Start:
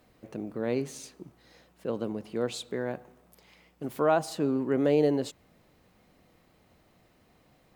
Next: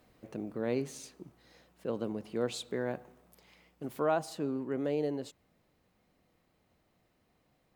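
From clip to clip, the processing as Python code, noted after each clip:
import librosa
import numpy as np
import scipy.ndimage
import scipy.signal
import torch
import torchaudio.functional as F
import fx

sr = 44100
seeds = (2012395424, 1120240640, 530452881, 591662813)

y = fx.rider(x, sr, range_db=4, speed_s=2.0)
y = F.gain(torch.from_numpy(y), -5.5).numpy()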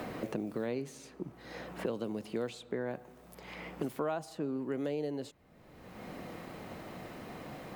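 y = fx.band_squash(x, sr, depth_pct=100)
y = F.gain(torch.from_numpy(y), -1.5).numpy()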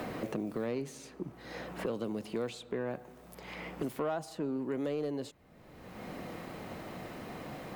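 y = 10.0 ** (-27.0 / 20.0) * np.tanh(x / 10.0 ** (-27.0 / 20.0))
y = F.gain(torch.from_numpy(y), 2.0).numpy()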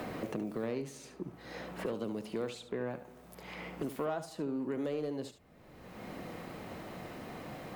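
y = x + 10.0 ** (-11.5 / 20.0) * np.pad(x, (int(72 * sr / 1000.0), 0))[:len(x)]
y = F.gain(torch.from_numpy(y), -1.5).numpy()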